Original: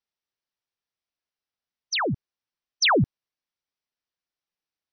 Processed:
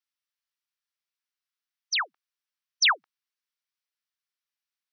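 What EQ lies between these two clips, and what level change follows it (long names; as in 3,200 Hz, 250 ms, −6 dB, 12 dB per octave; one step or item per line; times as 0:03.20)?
high-pass filter 1,100 Hz 24 dB per octave
0.0 dB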